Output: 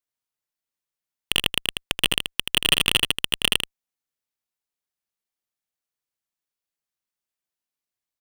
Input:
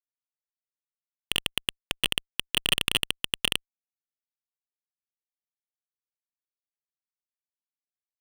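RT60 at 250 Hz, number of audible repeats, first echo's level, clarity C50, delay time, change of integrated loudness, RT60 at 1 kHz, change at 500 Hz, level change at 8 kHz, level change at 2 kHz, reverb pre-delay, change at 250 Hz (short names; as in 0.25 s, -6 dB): none, 1, -7.0 dB, none, 80 ms, +5.5 dB, none, +6.0 dB, +6.0 dB, +6.0 dB, none, +6.0 dB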